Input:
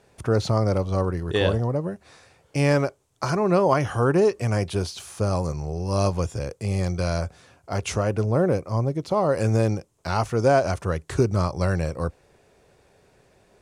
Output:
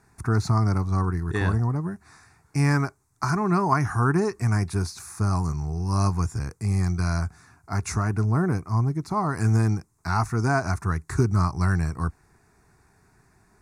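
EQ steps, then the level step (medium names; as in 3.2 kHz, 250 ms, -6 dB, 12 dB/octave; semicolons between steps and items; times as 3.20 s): static phaser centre 1.3 kHz, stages 4; +2.5 dB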